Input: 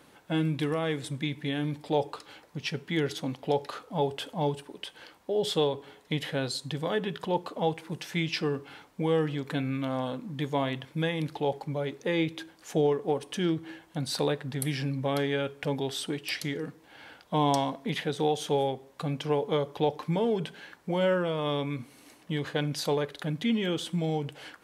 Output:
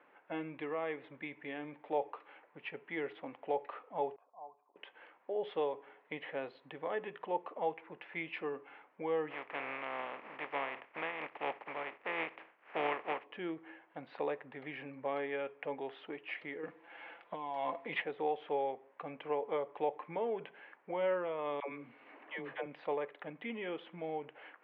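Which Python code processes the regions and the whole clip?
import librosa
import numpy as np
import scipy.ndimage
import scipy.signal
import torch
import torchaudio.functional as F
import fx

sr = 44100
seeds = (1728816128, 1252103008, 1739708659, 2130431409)

y = fx.chain(x, sr, fx.formant_cascade(vowel='a'),
    fx.peak_eq(hz=780.0, db=-7.5, octaves=0.41), at=(4.16, 4.76))
y = fx.spec_flatten(y, sr, power=0.31, at=(9.3, 13.24), fade=0.02)
y = fx.peak_eq(y, sr, hz=4000.0, db=-7.5, octaves=0.6, at=(9.3, 13.24), fade=0.02)
y = fx.chain(y, sr, fx.over_compress(threshold_db=-31.0, ratio=-1.0),
    fx.high_shelf(hz=3900.0, db=11.0),
    fx.comb(ms=5.9, depth=0.44), at=(16.63, 18.02))
y = fx.chain(y, sr, fx.dispersion(late='lows', ms=97.0, hz=470.0),
    fx.band_squash(depth_pct=70), at=(21.6, 22.66))
y = scipy.signal.sosfilt(scipy.signal.butter(2, 480.0, 'highpass', fs=sr, output='sos'), y)
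y = fx.dynamic_eq(y, sr, hz=1500.0, q=4.8, threshold_db=-55.0, ratio=4.0, max_db=-7)
y = scipy.signal.sosfilt(scipy.signal.butter(6, 2500.0, 'lowpass', fs=sr, output='sos'), y)
y = y * librosa.db_to_amplitude(-4.5)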